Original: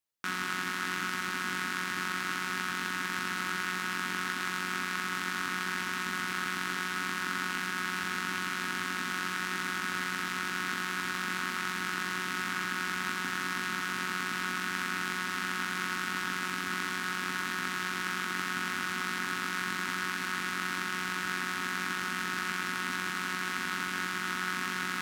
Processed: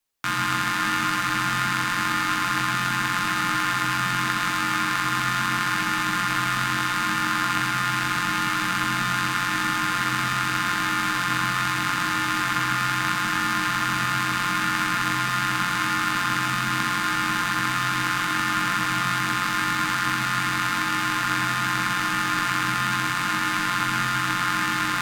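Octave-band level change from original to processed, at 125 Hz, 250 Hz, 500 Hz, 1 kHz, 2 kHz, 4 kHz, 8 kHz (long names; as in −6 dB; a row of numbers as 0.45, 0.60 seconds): +14.0, +9.5, +5.5, +12.0, +8.0, +9.0, +8.5 decibels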